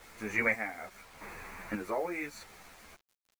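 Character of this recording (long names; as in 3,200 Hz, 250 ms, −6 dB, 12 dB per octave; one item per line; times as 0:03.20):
chopped level 0.83 Hz, depth 65%, duty 45%
a quantiser's noise floor 10 bits, dither none
a shimmering, thickened sound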